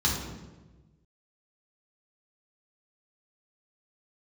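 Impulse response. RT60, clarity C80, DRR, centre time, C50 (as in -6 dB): 1.2 s, 5.5 dB, -4.5 dB, 51 ms, 3.0 dB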